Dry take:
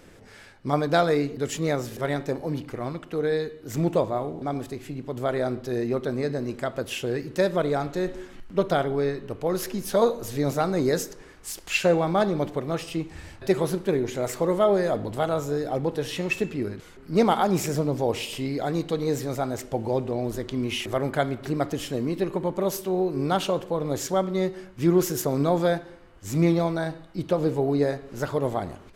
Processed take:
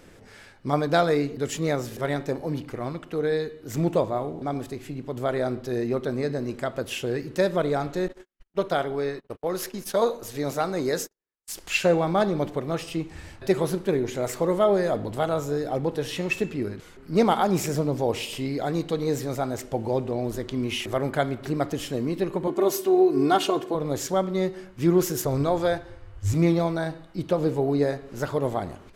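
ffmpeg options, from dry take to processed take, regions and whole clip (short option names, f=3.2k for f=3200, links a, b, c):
-filter_complex "[0:a]asettb=1/sr,asplit=3[a][b][c];[a]atrim=end=8.084[d];[b]atrim=start=8.08:end=11.53,asetpts=PTS-STARTPTS,afade=t=in:d=0.004:c=qsin,afade=t=out:st=3.446:d=0.004:c=qsin,agate=range=-46dB:threshold=-36dB:ratio=16:release=100:detection=peak,lowshelf=f=280:g=-8[e];[c]atrim=start=11.526[f];[d][e]acrossfade=d=0.004:c1=hsin:c2=qsin[g];[g][f]acrossfade=d=0.004:c1=qsin:c2=hsin,asettb=1/sr,asplit=3[h][i][j];[h]atrim=end=22.474[k];[i]atrim=start=22.47:end=23.75,asetpts=PTS-STARTPTS,afade=t=in:d=0.004:c=qsin,afade=t=out:st=1.276:d=0.004:c=qsin,highpass=f=170:t=q:w=1.6,aecho=1:1:2.8:0.89,atrim=end_sample=56448[l];[j]atrim=start=23.746[m];[k][l]acrossfade=d=0.004:c1=hsin:c2=qsin[n];[n][m]acrossfade=d=0.004:c1=qsin:c2=hsin,asettb=1/sr,asplit=3[o][p][q];[o]atrim=end=25.254[r];[p]atrim=start=25.25:end=26.34,asetpts=PTS-STARTPTS,afade=t=in:d=0.004:c=qsin,afade=t=out:st=1.086:d=0.004:c=qsin,lowpass=12k,lowshelf=f=130:t=q:w=3:g=10.5[s];[q]atrim=start=26.336[t];[r][s]acrossfade=d=0.004:c1=hsin:c2=qsin[u];[u][t]acrossfade=d=0.004:c1=qsin:c2=hsin"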